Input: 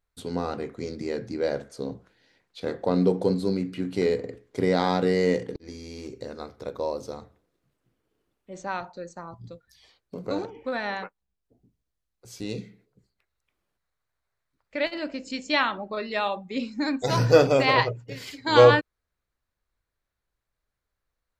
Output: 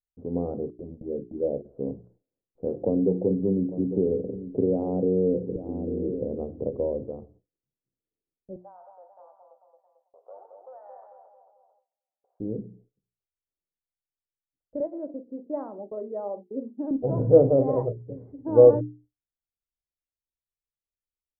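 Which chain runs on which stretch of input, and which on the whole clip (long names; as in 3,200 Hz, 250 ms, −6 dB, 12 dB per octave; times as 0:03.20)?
0:00.70–0:01.65: noise gate −37 dBFS, range −24 dB + parametric band 110 Hz −6.5 dB 0.79 octaves + flanger swept by the level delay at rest 3.5 ms, full sweep at −23.5 dBFS
0:02.81–0:07.04: parametric band 1,900 Hz −10.5 dB 2.3 octaves + single-tap delay 849 ms −18 dB + multiband upward and downward compressor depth 70%
0:08.56–0:12.40: Butterworth high-pass 700 Hz + downward compressor 2.5 to 1, threshold −34 dBFS + echo with a time of its own for lows and highs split 1,100 Hz, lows 222 ms, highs 92 ms, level −4 dB
0:14.80–0:16.91: high-pass filter 330 Hz + downward expander −41 dBFS
whole clip: mains-hum notches 60/120/180/240/300/360/420 Hz; noise gate with hold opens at −49 dBFS; inverse Chebyshev low-pass filter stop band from 2,600 Hz, stop band 70 dB; level +2.5 dB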